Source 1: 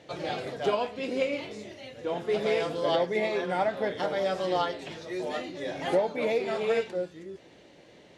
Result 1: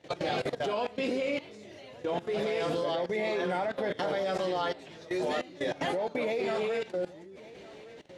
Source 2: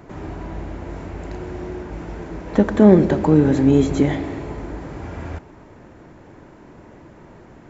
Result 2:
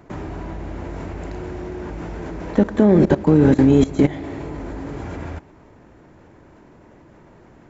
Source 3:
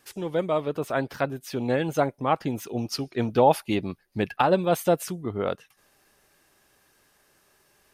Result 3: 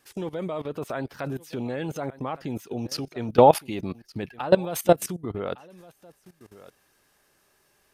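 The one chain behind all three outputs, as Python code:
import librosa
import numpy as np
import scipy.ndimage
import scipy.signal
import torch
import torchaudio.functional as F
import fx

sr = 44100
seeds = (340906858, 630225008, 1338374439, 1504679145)

y = x + 10.0 ** (-22.5 / 20.0) * np.pad(x, (int(1160 * sr / 1000.0), 0))[:len(x)]
y = fx.level_steps(y, sr, step_db=18)
y = y * librosa.db_to_amplitude(6.0)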